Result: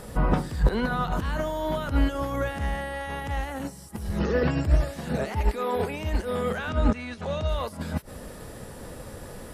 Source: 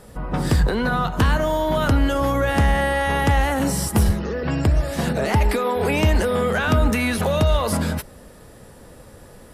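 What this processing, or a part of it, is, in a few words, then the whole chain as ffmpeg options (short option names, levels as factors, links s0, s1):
de-esser from a sidechain: -filter_complex "[0:a]asplit=2[s0][s1];[s1]highpass=5900,apad=whole_len=420467[s2];[s0][s2]sidechaincompress=threshold=0.00178:ratio=12:attack=2.2:release=57,asettb=1/sr,asplit=3[s3][s4][s5];[s3]atrim=end=6.694[s6];[s4]atrim=start=6.69:end=7.49,asetpts=PTS-STARTPTS,afade=t=in:d=0.004:c=qsin,afade=t=out:st=0.796:d=0.004:c=qsin,lowpass=f=7700:w=0.5412,lowpass=f=7700:w=1.3066[s7];[s5]atrim=start=7.486[s8];[s6][s7]acrossfade=d=0.004:c1=hsin:c2=qsin[s9];[s9][s8]acrossfade=d=0.004:c1=qsin:c2=hsin,volume=2.11"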